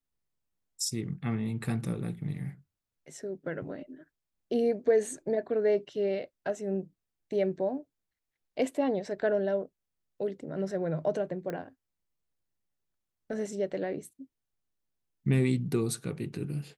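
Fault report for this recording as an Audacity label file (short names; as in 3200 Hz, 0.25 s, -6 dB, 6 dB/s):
11.500000	11.500000	pop -23 dBFS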